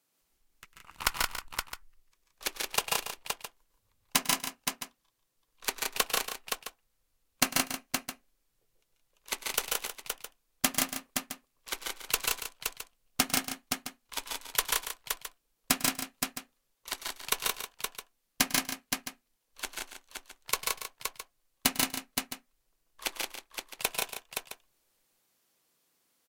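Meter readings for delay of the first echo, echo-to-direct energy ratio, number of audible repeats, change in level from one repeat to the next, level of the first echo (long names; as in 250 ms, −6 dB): 100 ms, 1.5 dB, 8, repeats not evenly spaced, −17.5 dB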